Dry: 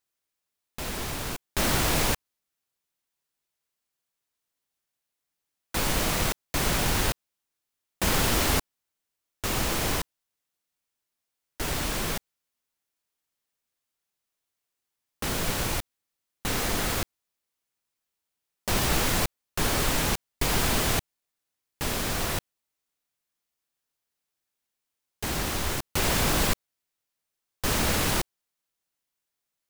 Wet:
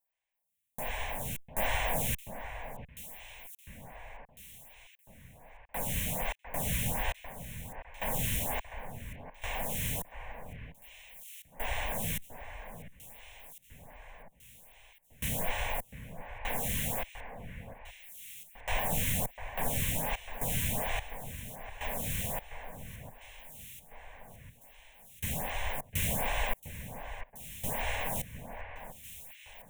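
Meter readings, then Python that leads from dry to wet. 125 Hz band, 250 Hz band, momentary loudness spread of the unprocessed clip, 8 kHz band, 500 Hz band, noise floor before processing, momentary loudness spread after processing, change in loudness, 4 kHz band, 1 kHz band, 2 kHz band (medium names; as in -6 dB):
-6.0 dB, -10.0 dB, 10 LU, -8.0 dB, -7.5 dB, -85 dBFS, 19 LU, -8.0 dB, -11.5 dB, -6.0 dB, -6.5 dB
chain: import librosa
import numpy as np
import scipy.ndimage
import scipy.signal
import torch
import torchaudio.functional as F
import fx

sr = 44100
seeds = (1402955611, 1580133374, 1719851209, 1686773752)

y = fx.rider(x, sr, range_db=4, speed_s=2.0)
y = fx.fixed_phaser(y, sr, hz=1300.0, stages=6)
y = fx.echo_alternate(y, sr, ms=701, hz=2300.0, feedback_pct=71, wet_db=-10.0)
y = fx.stagger_phaser(y, sr, hz=1.3)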